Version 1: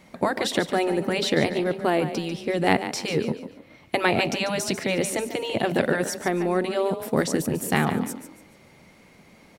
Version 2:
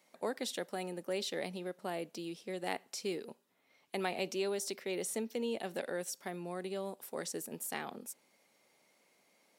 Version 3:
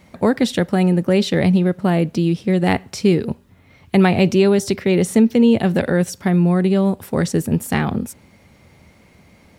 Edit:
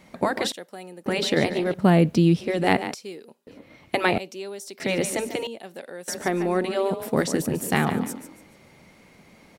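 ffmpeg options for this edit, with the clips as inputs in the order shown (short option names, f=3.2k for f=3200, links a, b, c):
-filter_complex "[1:a]asplit=4[a][b][c][d];[0:a]asplit=6[e][f][g][h][i][j];[e]atrim=end=0.522[k];[a]atrim=start=0.518:end=1.062[l];[f]atrim=start=1.058:end=1.742[m];[2:a]atrim=start=1.738:end=2.412[n];[g]atrim=start=2.408:end=2.942[o];[b]atrim=start=2.938:end=3.472[p];[h]atrim=start=3.468:end=4.182[q];[c]atrim=start=4.178:end=4.802[r];[i]atrim=start=4.798:end=5.472[s];[d]atrim=start=5.468:end=6.082[t];[j]atrim=start=6.078[u];[k][l]acrossfade=d=0.004:c1=hsin:c2=hsin[v];[v][m]acrossfade=d=0.004:c1=hsin:c2=hsin[w];[w][n]acrossfade=d=0.004:c1=hsin:c2=hsin[x];[x][o]acrossfade=d=0.004:c1=hsin:c2=hsin[y];[y][p]acrossfade=d=0.004:c1=hsin:c2=hsin[z];[z][q]acrossfade=d=0.004:c1=hsin:c2=hsin[aa];[aa][r]acrossfade=d=0.004:c1=hsin:c2=hsin[ab];[ab][s]acrossfade=d=0.004:c1=hsin:c2=hsin[ac];[ac][t]acrossfade=d=0.004:c1=hsin:c2=hsin[ad];[ad][u]acrossfade=d=0.004:c1=hsin:c2=hsin"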